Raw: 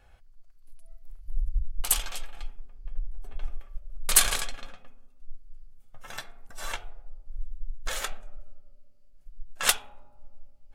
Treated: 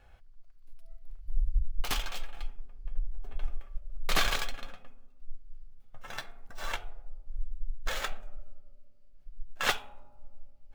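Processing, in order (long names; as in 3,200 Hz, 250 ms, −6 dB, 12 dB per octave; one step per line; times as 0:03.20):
running median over 5 samples
slew-rate limiting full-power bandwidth 250 Hz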